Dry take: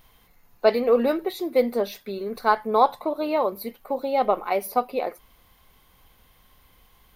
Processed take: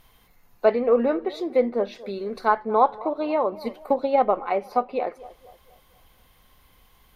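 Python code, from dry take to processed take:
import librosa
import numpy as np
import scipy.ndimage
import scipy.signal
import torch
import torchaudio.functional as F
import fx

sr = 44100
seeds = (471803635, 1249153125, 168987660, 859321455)

y = fx.env_lowpass_down(x, sr, base_hz=2000.0, full_db=-20.0)
y = fx.echo_banded(y, sr, ms=236, feedback_pct=45, hz=630.0, wet_db=-18)
y = fx.transient(y, sr, attack_db=7, sustain_db=2, at=(3.62, 4.24))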